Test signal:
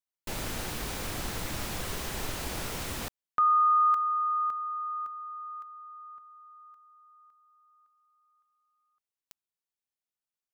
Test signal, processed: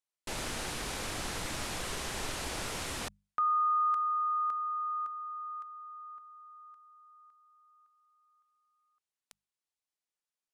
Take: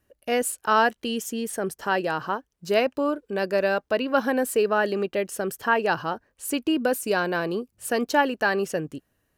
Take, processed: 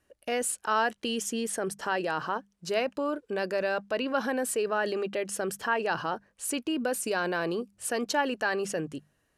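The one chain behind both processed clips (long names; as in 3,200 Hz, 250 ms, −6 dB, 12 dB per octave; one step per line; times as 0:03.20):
low-pass filter 11,000 Hz 24 dB per octave
low-shelf EQ 380 Hz −4.5 dB
mains-hum notches 50/100/150/200 Hz
in parallel at −2 dB: compressor whose output falls as the input rises −31 dBFS, ratio −1
on the sum: level −6.5 dB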